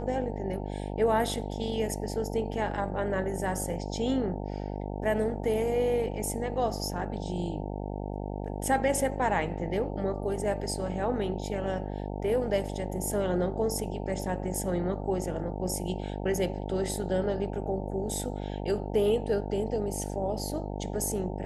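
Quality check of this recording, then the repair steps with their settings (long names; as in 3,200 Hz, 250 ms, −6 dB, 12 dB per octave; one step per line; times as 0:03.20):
mains buzz 50 Hz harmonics 18 −35 dBFS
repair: hum removal 50 Hz, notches 18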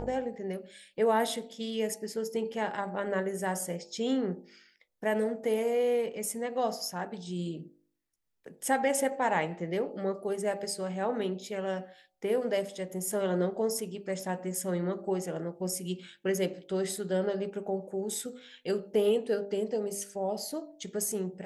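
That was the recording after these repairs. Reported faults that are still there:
none of them is left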